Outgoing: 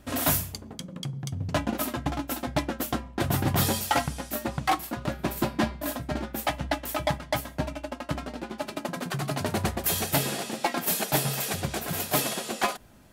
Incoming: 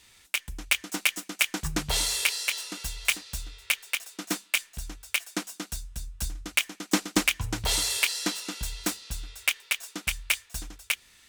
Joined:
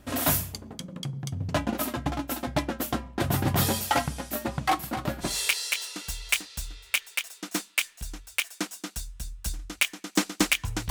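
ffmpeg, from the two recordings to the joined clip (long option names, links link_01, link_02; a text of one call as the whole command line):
ffmpeg -i cue0.wav -i cue1.wav -filter_complex "[0:a]asplit=3[link_01][link_02][link_03];[link_01]afade=type=out:start_time=4.81:duration=0.02[link_04];[link_02]aecho=1:1:258:0.266,afade=type=in:start_time=4.81:duration=0.02,afade=type=out:start_time=5.38:duration=0.02[link_05];[link_03]afade=type=in:start_time=5.38:duration=0.02[link_06];[link_04][link_05][link_06]amix=inputs=3:normalize=0,apad=whole_dur=10.9,atrim=end=10.9,atrim=end=5.38,asetpts=PTS-STARTPTS[link_07];[1:a]atrim=start=1.96:end=7.66,asetpts=PTS-STARTPTS[link_08];[link_07][link_08]acrossfade=duration=0.18:curve1=tri:curve2=tri" out.wav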